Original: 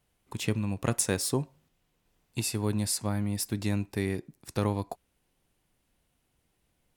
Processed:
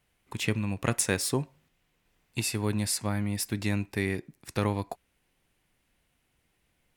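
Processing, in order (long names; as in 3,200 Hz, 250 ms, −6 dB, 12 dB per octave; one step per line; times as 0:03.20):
parametric band 2,100 Hz +6.5 dB 1.2 octaves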